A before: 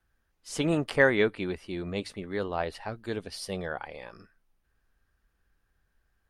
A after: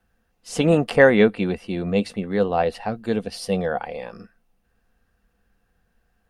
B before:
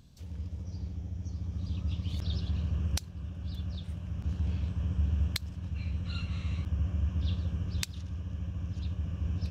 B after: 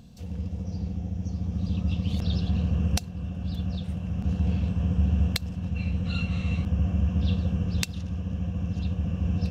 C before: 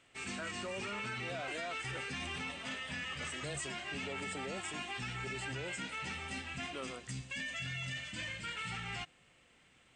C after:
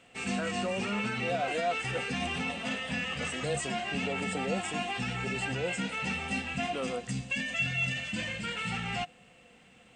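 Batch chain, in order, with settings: small resonant body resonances 210/490/710/2700 Hz, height 11 dB, ringing for 45 ms; gain +4.5 dB

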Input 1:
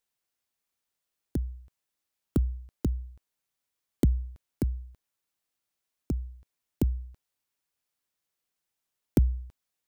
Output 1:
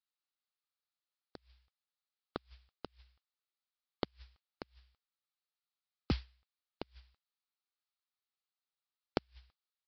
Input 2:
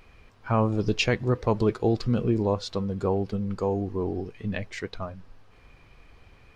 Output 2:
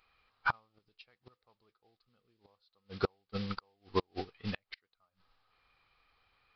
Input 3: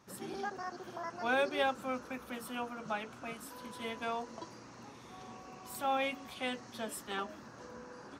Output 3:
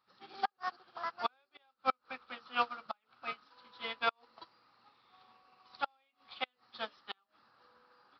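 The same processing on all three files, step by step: thirty-one-band EQ 500 Hz +4 dB, 800 Hz +8 dB, 1250 Hz +11 dB, 4000 Hz +5 dB; modulation noise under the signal 18 dB; downsampling 11025 Hz; tilt shelf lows -8 dB, about 1100 Hz; flipped gate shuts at -22 dBFS, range -26 dB; upward expander 2.5:1, over -47 dBFS; gain +6 dB

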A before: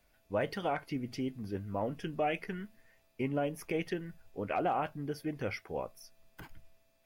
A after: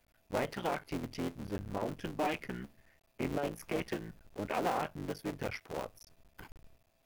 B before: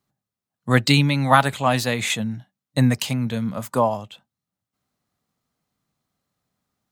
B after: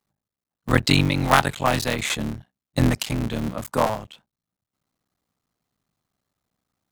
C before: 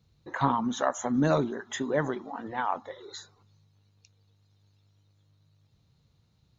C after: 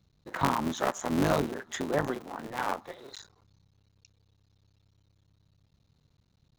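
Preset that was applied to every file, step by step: cycle switcher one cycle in 3, muted

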